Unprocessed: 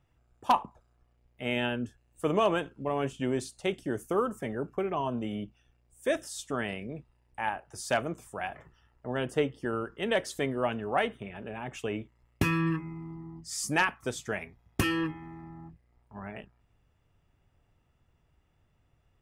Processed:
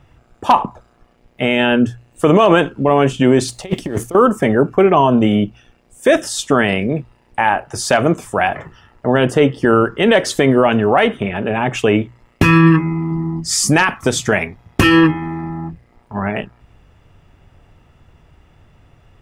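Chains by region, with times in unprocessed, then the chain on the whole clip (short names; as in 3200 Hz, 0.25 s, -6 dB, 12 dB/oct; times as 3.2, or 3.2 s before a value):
3.48–4.15 G.711 law mismatch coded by A + notch 1500 Hz, Q 7.6 + negative-ratio compressor -39 dBFS, ratio -0.5
13.11–14.33 tone controls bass +3 dB, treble +3 dB + compressor 4:1, threshold -29 dBFS
whole clip: high shelf 8000 Hz -10 dB; notches 60/120 Hz; maximiser +22 dB; gain -1 dB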